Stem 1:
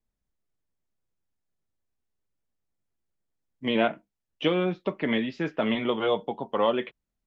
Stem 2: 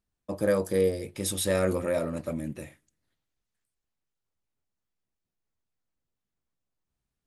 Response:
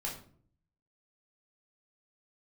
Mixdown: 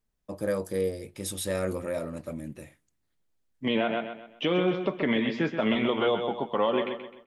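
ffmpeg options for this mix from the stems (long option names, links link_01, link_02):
-filter_complex "[0:a]volume=2dB,asplit=2[link_01][link_02];[link_02]volume=-9dB[link_03];[1:a]volume=-4dB[link_04];[link_03]aecho=0:1:129|258|387|516|645:1|0.37|0.137|0.0507|0.0187[link_05];[link_01][link_04][link_05]amix=inputs=3:normalize=0,alimiter=limit=-15.5dB:level=0:latency=1:release=70"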